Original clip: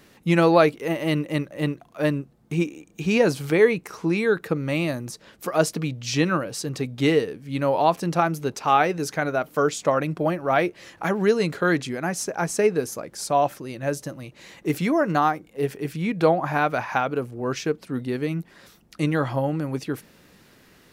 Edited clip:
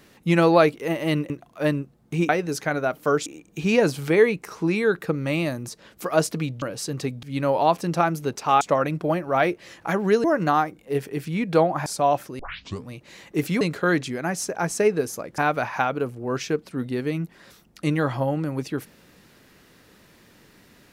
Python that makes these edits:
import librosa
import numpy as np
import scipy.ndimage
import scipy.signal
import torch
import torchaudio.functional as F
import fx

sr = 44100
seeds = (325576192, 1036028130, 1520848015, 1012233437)

y = fx.edit(x, sr, fx.cut(start_s=1.3, length_s=0.39),
    fx.cut(start_s=6.04, length_s=0.34),
    fx.cut(start_s=6.99, length_s=0.43),
    fx.move(start_s=8.8, length_s=0.97, to_s=2.68),
    fx.swap(start_s=11.4, length_s=1.77, other_s=14.92, other_length_s=1.62),
    fx.tape_start(start_s=13.7, length_s=0.52), tone=tone)